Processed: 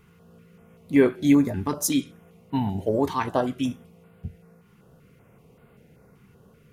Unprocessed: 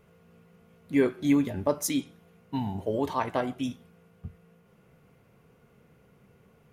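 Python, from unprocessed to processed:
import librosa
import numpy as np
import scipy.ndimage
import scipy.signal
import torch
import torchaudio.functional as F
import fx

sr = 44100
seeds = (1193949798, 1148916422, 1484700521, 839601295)

y = fx.filter_held_notch(x, sr, hz=5.2, low_hz=590.0, high_hz=5900.0)
y = y * 10.0 ** (5.5 / 20.0)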